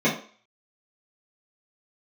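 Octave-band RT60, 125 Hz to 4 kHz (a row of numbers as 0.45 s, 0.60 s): 0.20 s, 0.40 s, 0.40 s, 0.45 s, 0.45 s, 0.45 s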